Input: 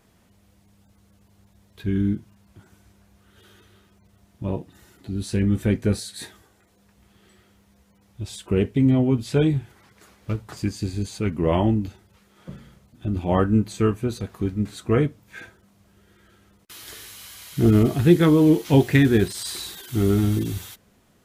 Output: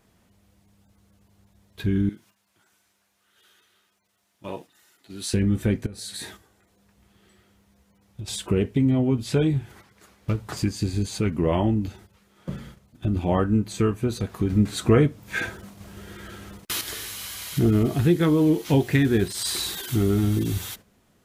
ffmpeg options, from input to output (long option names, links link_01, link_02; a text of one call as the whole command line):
ffmpeg -i in.wav -filter_complex "[0:a]asettb=1/sr,asplit=3[link_01][link_02][link_03];[link_01]atrim=end=2.094[link_04];[link_02]atrim=start=2.09:end=5.34,asetpts=PTS-STARTPTS,afade=type=in:duration=0.004:curve=qsin,afade=type=out:start_time=3.246:duration=0.004:curve=qsin,highpass=frequency=1500:poles=1[link_05];[link_03]atrim=start=5.336[link_06];[link_04][link_05]acrossfade=duration=0.004:curve1=hsin:curve2=qsin[link_07];[link_07][link_06]acrossfade=duration=0.004:curve1=qsin:curve2=hsin,asettb=1/sr,asplit=3[link_08][link_09][link_10];[link_08]atrim=end=5.864[link_11];[link_09]atrim=start=5.86:end=8.28,asetpts=PTS-STARTPTS,afade=type=in:duration=0.004:curve=qsin,afade=type=out:start_time=2.416:duration=0.004:curve=qsin,acompressor=threshold=-37dB:ratio=10:attack=3.2:release=140:knee=1:detection=peak[link_12];[link_10]atrim=start=8.276[link_13];[link_11][link_12]acrossfade=duration=0.004:curve1=hsin:curve2=qsin[link_14];[link_14][link_13]acrossfade=duration=0.004:curve1=qsin:curve2=hsin,asplit=3[link_15][link_16][link_17];[link_15]atrim=end=14.502[link_18];[link_16]atrim=start=14.498:end=16.812,asetpts=PTS-STARTPTS,volume=9dB[link_19];[link_17]atrim=start=16.808[link_20];[link_18][link_19]acrossfade=duration=0.004:curve1=hsin:curve2=hsin[link_21];[link_21][link_20]acrossfade=duration=0.004:curve1=hsin:curve2=hsin,agate=range=-9dB:threshold=-49dB:ratio=16:detection=peak,acompressor=threshold=-31dB:ratio=2,volume=6.5dB" out.wav